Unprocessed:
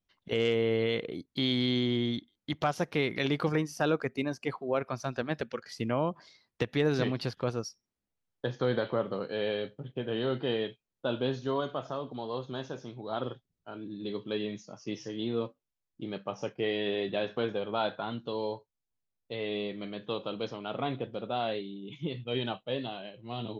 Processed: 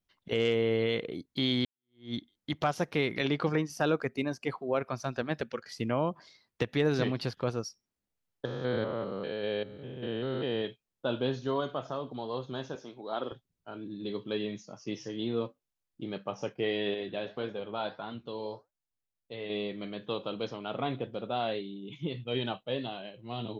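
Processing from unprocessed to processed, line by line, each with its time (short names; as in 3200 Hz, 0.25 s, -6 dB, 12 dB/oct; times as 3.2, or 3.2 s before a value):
1.65–2.14 fade in exponential
3.21–3.7 BPF 100–5800 Hz
8.45–10.65 stepped spectrum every 0.2 s
12.75–13.32 HPF 260 Hz
16.94–19.5 flange 1.7 Hz, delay 3.9 ms, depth 6.9 ms, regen -82%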